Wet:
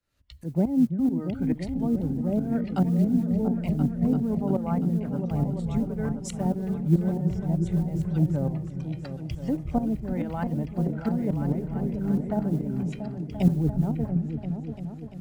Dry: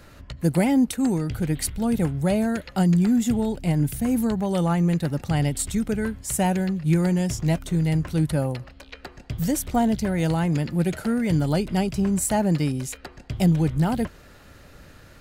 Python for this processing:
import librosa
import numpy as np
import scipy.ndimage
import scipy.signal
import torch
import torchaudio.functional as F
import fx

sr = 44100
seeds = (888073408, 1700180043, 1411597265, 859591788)

y = fx.noise_reduce_blind(x, sr, reduce_db=11)
y = fx.env_lowpass_down(y, sr, base_hz=480.0, full_db=-19.0)
y = fx.mod_noise(y, sr, seeds[0], snr_db=35)
y = fx.tremolo_shape(y, sr, shape='saw_up', hz=4.6, depth_pct=80)
y = fx.echo_opening(y, sr, ms=343, hz=200, octaves=2, feedback_pct=70, wet_db=-3)
y = fx.band_widen(y, sr, depth_pct=40)